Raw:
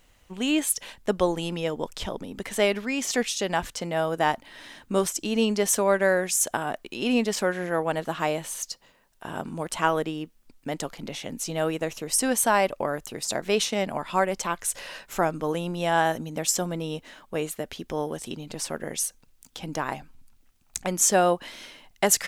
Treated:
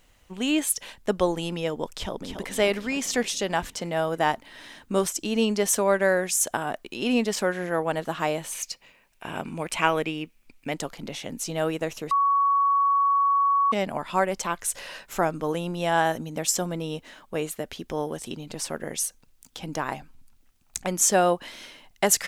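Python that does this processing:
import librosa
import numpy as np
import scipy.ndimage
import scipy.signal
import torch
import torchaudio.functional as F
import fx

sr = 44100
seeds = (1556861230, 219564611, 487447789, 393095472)

y = fx.echo_throw(x, sr, start_s=1.96, length_s=0.54, ms=280, feedback_pct=65, wet_db=-6.5)
y = fx.peak_eq(y, sr, hz=2400.0, db=14.0, octaves=0.39, at=(8.52, 10.73))
y = fx.edit(y, sr, fx.bleep(start_s=12.11, length_s=1.61, hz=1120.0, db=-18.0), tone=tone)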